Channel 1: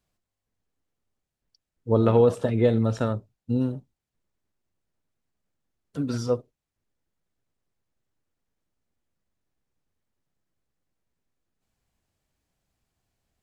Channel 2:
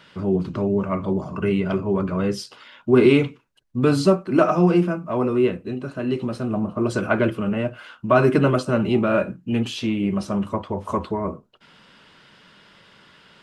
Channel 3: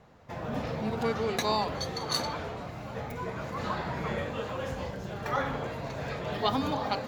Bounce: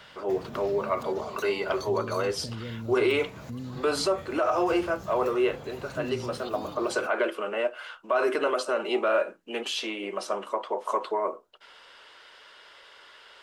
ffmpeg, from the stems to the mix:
-filter_complex "[0:a]acompressor=threshold=-24dB:ratio=6,volume=-2dB[a];[1:a]highpass=f=430:w=0.5412,highpass=f=430:w=1.3066,bandreject=f=2.5k:w=25,volume=1dB[b];[2:a]highshelf=f=6.3k:g=11.5,acompressor=threshold=-36dB:ratio=3,volume=-2.5dB[c];[a][c]amix=inputs=2:normalize=0,acrossover=split=350|3000[d][e][f];[e]acompressor=threshold=-45dB:ratio=6[g];[d][g][f]amix=inputs=3:normalize=0,alimiter=level_in=5.5dB:limit=-24dB:level=0:latency=1:release=28,volume=-5.5dB,volume=0dB[h];[b][h]amix=inputs=2:normalize=0,alimiter=limit=-15.5dB:level=0:latency=1:release=63"

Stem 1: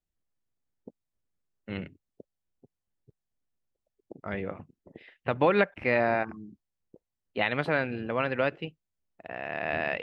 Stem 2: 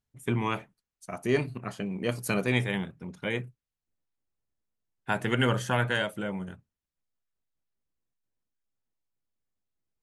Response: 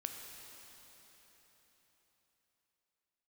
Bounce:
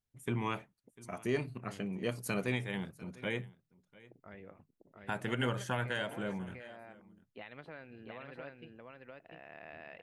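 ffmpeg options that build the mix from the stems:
-filter_complex "[0:a]acompressor=threshold=-30dB:ratio=3,volume=-16dB,asplit=2[a][b];[b]volume=-3dB[c];[1:a]volume=-5dB,asplit=2[d][e];[e]volume=-22.5dB[f];[c][f]amix=inputs=2:normalize=0,aecho=0:1:697:1[g];[a][d][g]amix=inputs=3:normalize=0,alimiter=limit=-22dB:level=0:latency=1:release=329"

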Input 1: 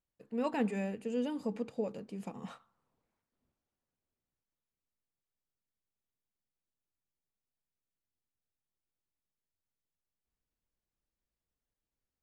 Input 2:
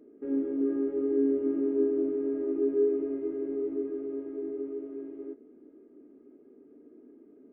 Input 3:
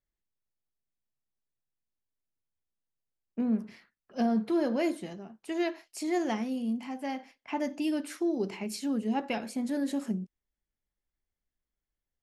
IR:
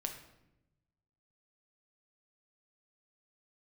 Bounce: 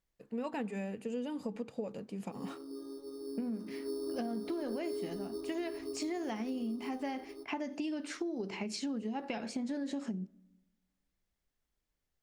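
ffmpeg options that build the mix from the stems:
-filter_complex "[0:a]volume=1.5dB[a];[1:a]asubboost=boost=8:cutoff=78,lowpass=f=1.1k:t=q:w=9.1,acrusher=samples=9:mix=1:aa=0.000001,adelay=2100,volume=-10dB,afade=t=in:st=3.67:d=0.45:silence=0.334965,asplit=2[b][c];[c]volume=-6.5dB[d];[2:a]lowpass=f=7.3k:w=0.5412,lowpass=f=7.3k:w=1.3066,acompressor=threshold=-30dB:ratio=6,volume=1.5dB,asplit=2[e][f];[f]volume=-18dB[g];[3:a]atrim=start_sample=2205[h];[d][g]amix=inputs=2:normalize=0[i];[i][h]afir=irnorm=-1:irlink=0[j];[a][b][e][j]amix=inputs=4:normalize=0,acompressor=threshold=-34dB:ratio=6"

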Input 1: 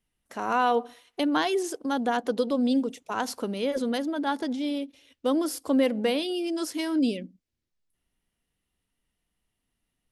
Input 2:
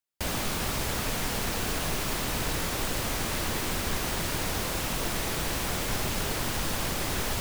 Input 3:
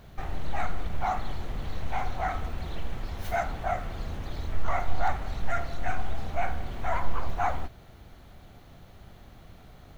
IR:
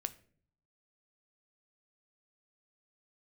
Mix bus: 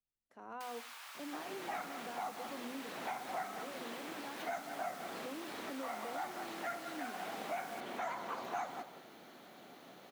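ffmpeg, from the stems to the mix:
-filter_complex "[0:a]highshelf=f=2.6k:g=-10.5,bandreject=f=50:t=h:w=6,bandreject=f=100:t=h:w=6,bandreject=f=150:t=h:w=6,bandreject=f=200:t=h:w=6,bandreject=f=250:t=h:w=6,volume=-20dB,asplit=2[a][b];[1:a]highpass=f=880:w=0.5412,highpass=f=880:w=1.3066,adelay=400,volume=-15.5dB,asplit=2[c][d];[d]volume=-10.5dB[e];[2:a]highpass=f=230:w=0.5412,highpass=f=230:w=1.3066,adelay=1150,volume=0.5dB,asplit=2[f][g];[g]volume=-15.5dB[h];[b]apad=whole_len=490448[i];[f][i]sidechaincompress=threshold=-49dB:ratio=8:attack=16:release=304[j];[e][h]amix=inputs=2:normalize=0,aecho=0:1:183:1[k];[a][c][j][k]amix=inputs=4:normalize=0,acrossover=split=210|3800[l][m][n];[l]acompressor=threshold=-60dB:ratio=4[o];[m]acompressor=threshold=-39dB:ratio=4[p];[n]acompressor=threshold=-56dB:ratio=4[q];[o][p][q]amix=inputs=3:normalize=0"

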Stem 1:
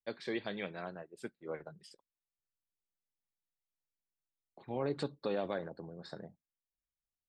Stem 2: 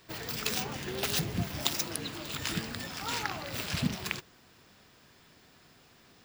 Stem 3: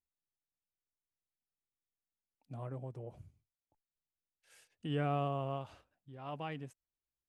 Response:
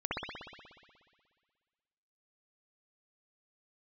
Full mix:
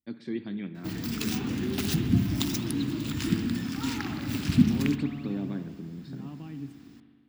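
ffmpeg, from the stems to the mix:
-filter_complex "[0:a]volume=-6.5dB,asplit=2[a][b];[b]volume=-18.5dB[c];[1:a]equalizer=f=160:w=1.5:g=-4.5,adelay=750,volume=-4.5dB,asplit=2[d][e];[e]volume=-10dB[f];[2:a]acompressor=threshold=-42dB:ratio=6,volume=-5dB,asplit=2[g][h];[h]volume=-16.5dB[i];[3:a]atrim=start_sample=2205[j];[c][f][i]amix=inputs=3:normalize=0[k];[k][j]afir=irnorm=-1:irlink=0[l];[a][d][g][l]amix=inputs=4:normalize=0,highpass=58,lowshelf=f=380:t=q:w=3:g=11.5"

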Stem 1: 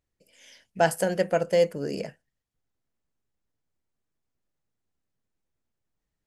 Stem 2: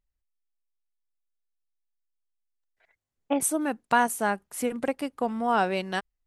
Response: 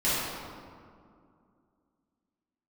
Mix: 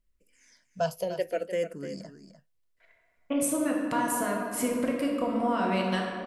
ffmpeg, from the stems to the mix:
-filter_complex "[0:a]asplit=2[a][b];[b]afreqshift=-0.72[c];[a][c]amix=inputs=2:normalize=1,volume=-4.5dB,asplit=2[d][e];[e]volume=-11.5dB[f];[1:a]alimiter=limit=-17dB:level=0:latency=1,acompressor=threshold=-30dB:ratio=2.5,volume=0dB,asplit=2[g][h];[h]volume=-10.5dB[i];[2:a]atrim=start_sample=2205[j];[i][j]afir=irnorm=-1:irlink=0[k];[f]aecho=0:1:300:1[l];[d][g][k][l]amix=inputs=4:normalize=0,asuperstop=centerf=820:order=4:qfactor=5.6"

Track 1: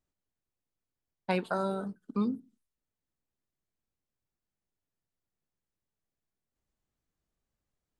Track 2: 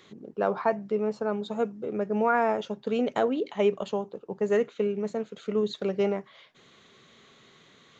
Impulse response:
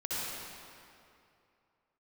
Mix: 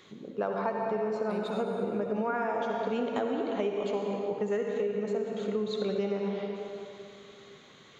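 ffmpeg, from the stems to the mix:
-filter_complex "[0:a]equalizer=f=2k:w=0.41:g=-7,volume=-6.5dB,asplit=2[a][b];[b]volume=-5.5dB[c];[1:a]volume=-3dB,asplit=2[d][e];[e]volume=-4dB[f];[2:a]atrim=start_sample=2205[g];[c][f]amix=inputs=2:normalize=0[h];[h][g]afir=irnorm=-1:irlink=0[i];[a][d][i]amix=inputs=3:normalize=0,acompressor=threshold=-27dB:ratio=6"

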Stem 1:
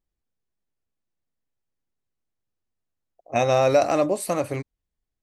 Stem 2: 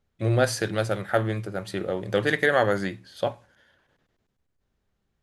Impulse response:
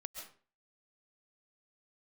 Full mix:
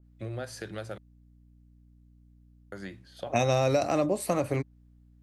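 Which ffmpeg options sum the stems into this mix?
-filter_complex "[0:a]adynamicequalizer=threshold=0.0141:dfrequency=3700:dqfactor=0.7:tfrequency=3700:tqfactor=0.7:attack=5:release=100:ratio=0.375:range=2:mode=cutabove:tftype=highshelf,volume=1dB[a];[1:a]acompressor=threshold=-26dB:ratio=6,volume=-7.5dB,asplit=3[b][c][d];[b]atrim=end=0.98,asetpts=PTS-STARTPTS,afade=t=out:st=0.976:d=0.004:c=hsin[e];[c]atrim=start=0.98:end=2.72,asetpts=PTS-STARTPTS,volume=0[f];[d]atrim=start=2.72,asetpts=PTS-STARTPTS,afade=t=in:d=0.004:c=hsin[g];[e][f][g]concat=n=3:v=0:a=1[h];[a][h]amix=inputs=2:normalize=0,acrossover=split=250|3000[i][j][k];[j]acompressor=threshold=-25dB:ratio=4[l];[i][l][k]amix=inputs=3:normalize=0,aeval=exprs='val(0)+0.00158*(sin(2*PI*60*n/s)+sin(2*PI*2*60*n/s)/2+sin(2*PI*3*60*n/s)/3+sin(2*PI*4*60*n/s)/4+sin(2*PI*5*60*n/s)/5)':c=same,adynamicequalizer=threshold=0.00631:dfrequency=2400:dqfactor=0.7:tfrequency=2400:tqfactor=0.7:attack=5:release=100:ratio=0.375:range=2:mode=cutabove:tftype=highshelf"

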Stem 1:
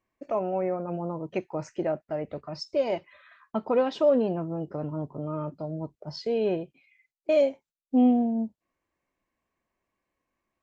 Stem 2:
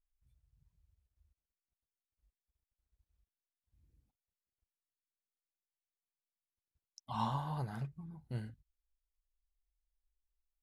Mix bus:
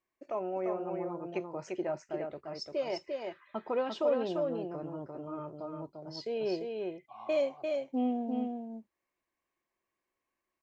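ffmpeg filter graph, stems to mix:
-filter_complex "[0:a]lowshelf=f=470:g=-9.5,volume=-4.5dB,asplit=2[a][b];[b]volume=-4dB[c];[1:a]asplit=3[d][e][f];[d]bandpass=f=730:t=q:w=8,volume=0dB[g];[e]bandpass=f=1.09k:t=q:w=8,volume=-6dB[h];[f]bandpass=f=2.44k:t=q:w=8,volume=-9dB[i];[g][h][i]amix=inputs=3:normalize=0,volume=-1.5dB[j];[c]aecho=0:1:346:1[k];[a][j][k]amix=inputs=3:normalize=0,equalizer=f=360:t=o:w=0.35:g=7"

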